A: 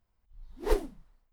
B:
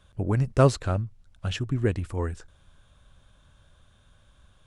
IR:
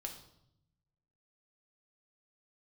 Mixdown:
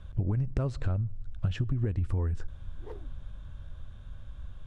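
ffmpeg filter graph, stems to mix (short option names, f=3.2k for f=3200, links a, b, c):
-filter_complex "[0:a]lowpass=f=1k:p=1,alimiter=limit=-18.5dB:level=0:latency=1:release=144,adelay=2200,volume=-13dB[a];[1:a]aemphasis=mode=reproduction:type=bsi,acompressor=threshold=-21dB:ratio=6,volume=2dB,asplit=2[b][c];[c]volume=-20.5dB[d];[2:a]atrim=start_sample=2205[e];[d][e]afir=irnorm=-1:irlink=0[f];[a][b][f]amix=inputs=3:normalize=0,acompressor=threshold=-25dB:ratio=6"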